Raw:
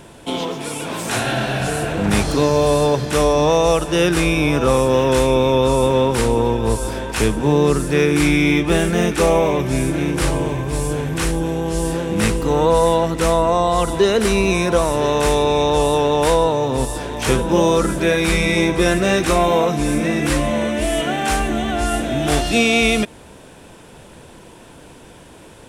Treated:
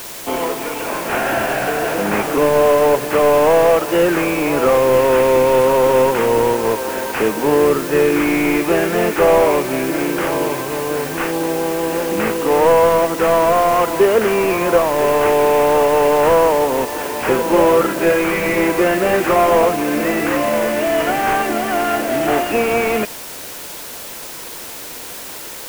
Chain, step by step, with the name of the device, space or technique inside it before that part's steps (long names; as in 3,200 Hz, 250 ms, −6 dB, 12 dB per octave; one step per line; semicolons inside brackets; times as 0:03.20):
army field radio (band-pass filter 350–2,900 Hz; variable-slope delta modulation 16 kbit/s; white noise bed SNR 16 dB)
level +6 dB